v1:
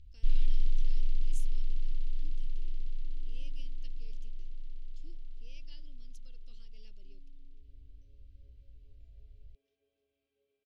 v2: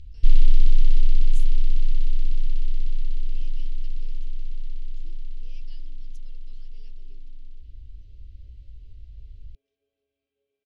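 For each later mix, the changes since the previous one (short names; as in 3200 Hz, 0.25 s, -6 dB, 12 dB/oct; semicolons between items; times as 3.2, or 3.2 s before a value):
first sound +11.5 dB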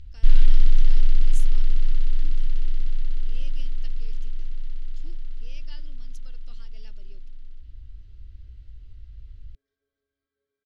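speech +7.5 dB; second sound: add fixed phaser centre 2700 Hz, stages 6; master: add band shelf 1100 Hz +11 dB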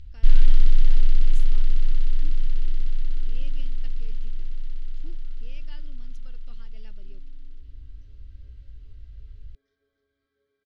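speech: add tone controls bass +6 dB, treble -13 dB; second sound +8.5 dB; reverb: on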